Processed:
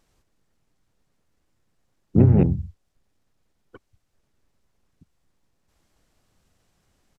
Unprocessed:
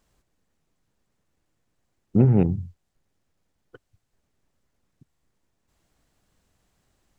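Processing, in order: harmoniser -5 st -2 dB; downsampling 32000 Hz

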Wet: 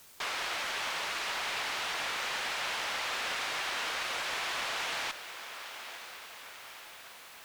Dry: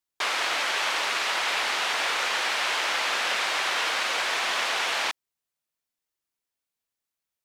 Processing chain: diffused feedback echo 0.993 s, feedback 58%, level -12 dB; requantised 8-bit, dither triangular; one-sided clip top -25 dBFS; gain -7.5 dB

